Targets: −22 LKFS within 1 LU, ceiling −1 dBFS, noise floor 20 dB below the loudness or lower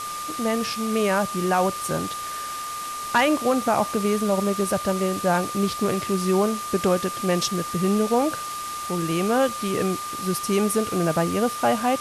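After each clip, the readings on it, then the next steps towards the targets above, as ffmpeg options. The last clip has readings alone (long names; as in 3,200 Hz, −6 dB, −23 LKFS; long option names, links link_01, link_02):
interfering tone 1,200 Hz; level of the tone −30 dBFS; background noise floor −32 dBFS; target noise floor −44 dBFS; integrated loudness −23.5 LKFS; sample peak −9.5 dBFS; target loudness −22.0 LKFS
→ -af "bandreject=frequency=1200:width=30"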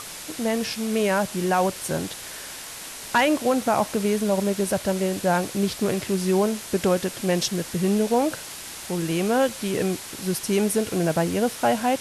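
interfering tone none found; background noise floor −38 dBFS; target noise floor −44 dBFS
→ -af "afftdn=noise_reduction=6:noise_floor=-38"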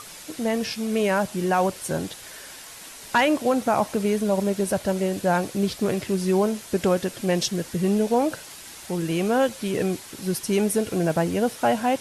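background noise floor −42 dBFS; target noise floor −44 dBFS
→ -af "afftdn=noise_reduction=6:noise_floor=-42"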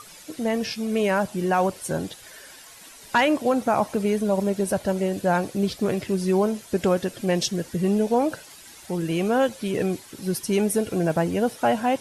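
background noise floor −46 dBFS; integrated loudness −24.0 LKFS; sample peak −10.5 dBFS; target loudness −22.0 LKFS
→ -af "volume=2dB"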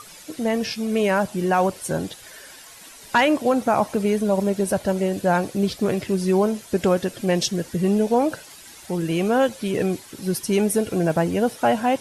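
integrated loudness −22.0 LKFS; sample peak −8.5 dBFS; background noise floor −44 dBFS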